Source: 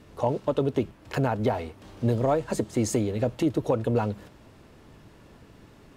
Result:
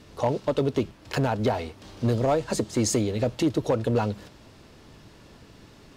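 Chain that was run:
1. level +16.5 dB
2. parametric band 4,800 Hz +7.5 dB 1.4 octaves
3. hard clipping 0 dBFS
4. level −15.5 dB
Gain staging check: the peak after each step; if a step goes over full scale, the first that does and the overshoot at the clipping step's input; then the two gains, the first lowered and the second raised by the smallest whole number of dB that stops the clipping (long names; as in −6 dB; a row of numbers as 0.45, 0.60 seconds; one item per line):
+5.0, +5.5, 0.0, −15.5 dBFS
step 1, 5.5 dB
step 1 +10.5 dB, step 4 −9.5 dB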